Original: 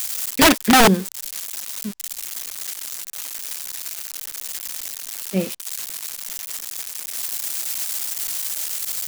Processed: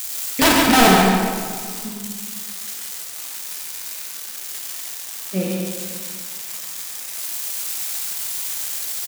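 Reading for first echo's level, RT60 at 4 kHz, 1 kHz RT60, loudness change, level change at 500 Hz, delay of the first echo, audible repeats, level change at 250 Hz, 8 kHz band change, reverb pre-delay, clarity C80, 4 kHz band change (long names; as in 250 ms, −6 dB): −5.0 dB, 1.2 s, 1.8 s, +1.0 dB, +1.5 dB, 142 ms, 1, +1.5 dB, 0.0 dB, 21 ms, 0.0 dB, +0.5 dB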